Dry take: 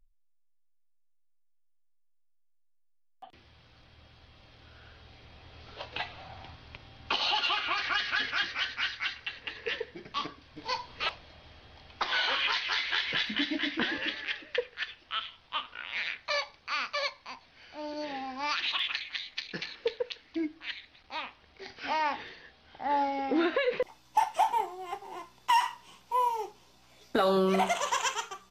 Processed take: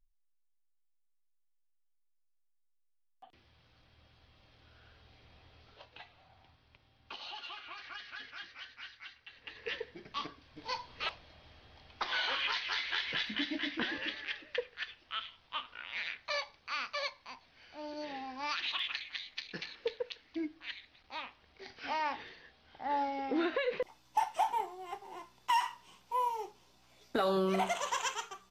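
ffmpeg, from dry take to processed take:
ffmpeg -i in.wav -af "volume=4dB,afade=type=out:start_time=5.38:duration=0.56:silence=0.354813,afade=type=in:start_time=9.26:duration=0.46:silence=0.266073" out.wav

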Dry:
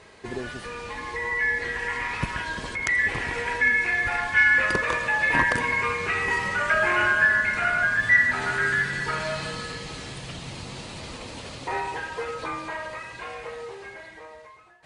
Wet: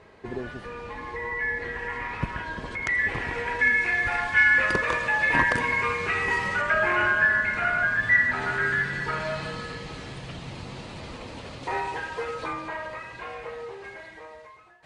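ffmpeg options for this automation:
ffmpeg -i in.wav -af "asetnsamples=nb_out_samples=441:pad=0,asendcmd='2.71 lowpass f 2500;3.59 lowpass f 5800;6.61 lowpass f 2600;11.63 lowpass f 5800;12.53 lowpass f 2900;13.84 lowpass f 6200',lowpass=frequency=1400:poles=1" out.wav

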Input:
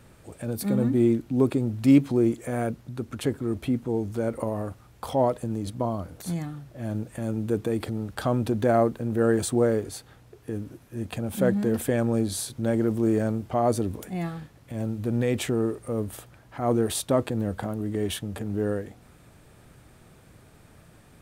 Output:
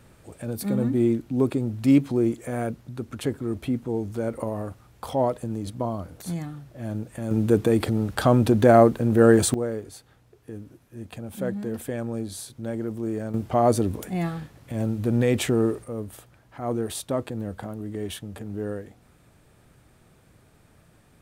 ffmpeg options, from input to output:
ffmpeg -i in.wav -af "asetnsamples=nb_out_samples=441:pad=0,asendcmd='7.31 volume volume 6.5dB;9.54 volume volume -6dB;13.34 volume volume 3.5dB;15.84 volume volume -4dB',volume=-0.5dB" out.wav

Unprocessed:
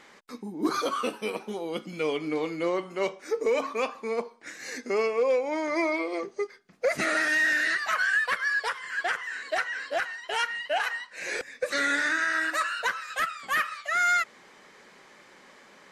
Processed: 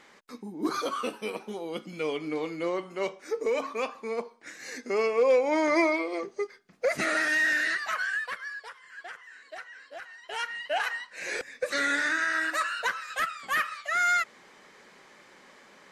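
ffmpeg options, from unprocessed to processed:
ffmpeg -i in.wav -af "volume=18dB,afade=type=in:start_time=4.84:duration=0.84:silence=0.421697,afade=type=out:start_time=5.68:duration=0.35:silence=0.501187,afade=type=out:start_time=7.57:duration=1.04:silence=0.223872,afade=type=in:start_time=10:duration=0.8:silence=0.223872" out.wav

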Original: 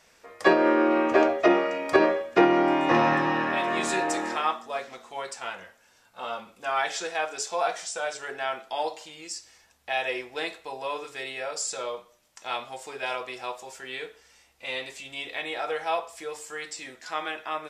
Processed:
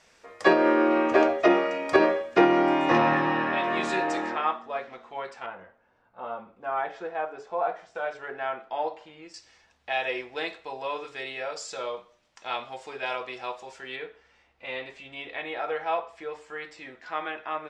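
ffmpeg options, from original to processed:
ffmpeg -i in.wav -af "asetnsamples=nb_out_samples=441:pad=0,asendcmd='2.98 lowpass f 4100;4.3 lowpass f 2500;5.46 lowpass f 1200;7.95 lowpass f 1900;9.34 lowpass f 4400;13.96 lowpass f 2500',lowpass=8200" out.wav

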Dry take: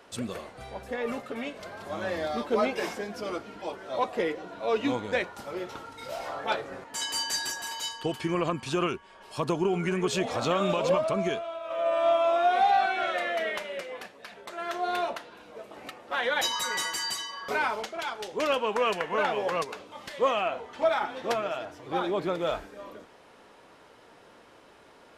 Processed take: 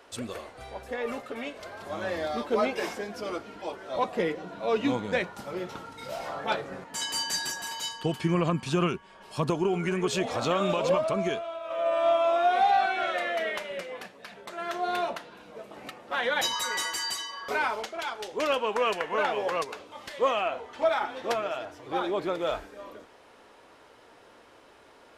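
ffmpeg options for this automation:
ffmpeg -i in.wav -af "asetnsamples=nb_out_samples=441:pad=0,asendcmd='1.82 equalizer g -2.5;3.96 equalizer g 8;9.5 equalizer g -0.5;13.71 equalizer g 6;16.53 equalizer g -6',equalizer=frequency=170:width_type=o:width=0.67:gain=-9.5" out.wav

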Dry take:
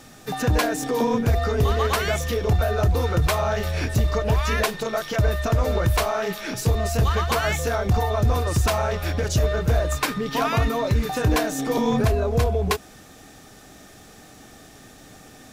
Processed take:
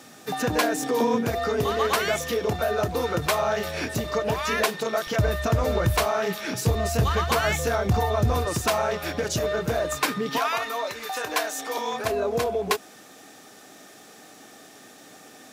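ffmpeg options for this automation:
ffmpeg -i in.wav -af "asetnsamples=nb_out_samples=441:pad=0,asendcmd='5.07 highpass f 82;8.45 highpass f 180;10.38 highpass f 700;12.05 highpass f 260',highpass=190" out.wav

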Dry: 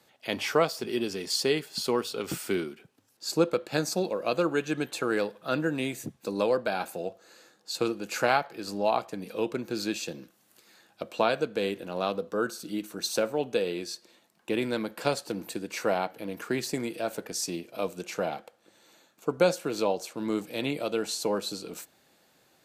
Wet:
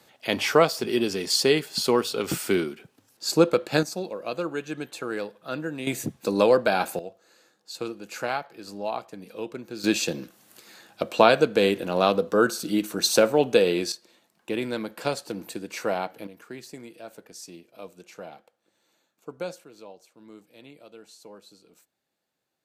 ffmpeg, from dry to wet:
ffmpeg -i in.wav -af "asetnsamples=nb_out_samples=441:pad=0,asendcmd='3.83 volume volume -3.5dB;5.87 volume volume 7dB;6.99 volume volume -4.5dB;9.84 volume volume 8.5dB;13.92 volume volume 0dB;16.27 volume volume -10.5dB;19.64 volume volume -18dB',volume=5.5dB" out.wav

